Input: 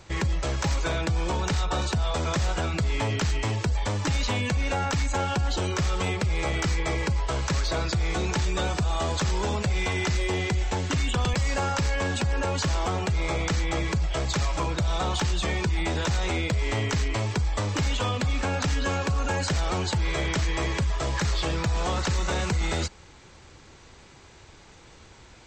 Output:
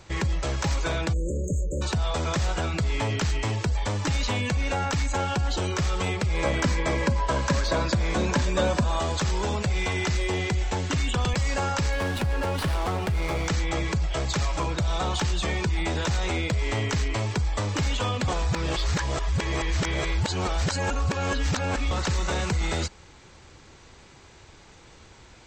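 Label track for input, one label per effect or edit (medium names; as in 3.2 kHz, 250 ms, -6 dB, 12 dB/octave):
1.130000	1.820000	spectral selection erased 640–6300 Hz
6.340000	9.000000	small resonant body resonances 240/560/1000/1600 Hz, height 11 dB
11.920000	13.480000	sliding maximum over 5 samples
18.280000	21.910000	reverse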